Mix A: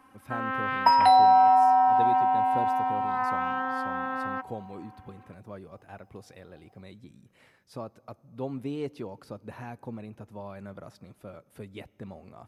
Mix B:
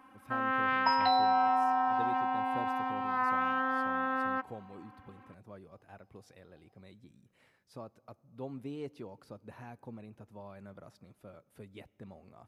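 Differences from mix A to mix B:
speech -7.5 dB; second sound: add ladder low-pass 5100 Hz, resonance 55%

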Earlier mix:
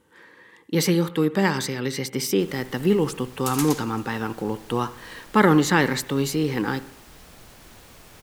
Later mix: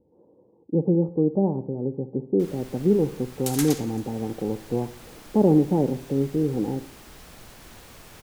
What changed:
speech: add steep low-pass 760 Hz 48 dB/oct; first sound: send +11.5 dB

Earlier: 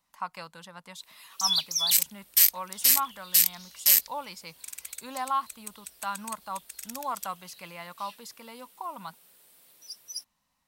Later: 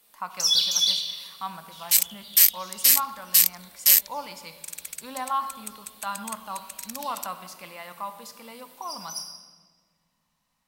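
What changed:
first sound: entry -1.00 s; second sound +3.0 dB; reverb: on, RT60 1.6 s

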